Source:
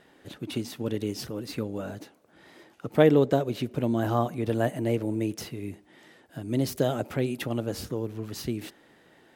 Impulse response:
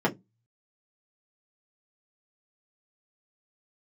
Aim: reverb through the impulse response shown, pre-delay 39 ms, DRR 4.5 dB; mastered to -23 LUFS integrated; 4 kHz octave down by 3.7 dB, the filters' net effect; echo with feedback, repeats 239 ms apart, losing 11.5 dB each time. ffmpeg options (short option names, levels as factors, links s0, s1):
-filter_complex "[0:a]equalizer=f=4000:t=o:g=-5,aecho=1:1:239|478|717:0.266|0.0718|0.0194,asplit=2[s0][s1];[1:a]atrim=start_sample=2205,adelay=39[s2];[s1][s2]afir=irnorm=-1:irlink=0,volume=0.133[s3];[s0][s3]amix=inputs=2:normalize=0,volume=1.19"